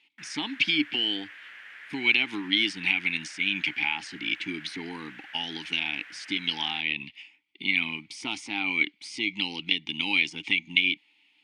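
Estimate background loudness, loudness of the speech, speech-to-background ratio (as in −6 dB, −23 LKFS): −45.0 LKFS, −27.0 LKFS, 18.0 dB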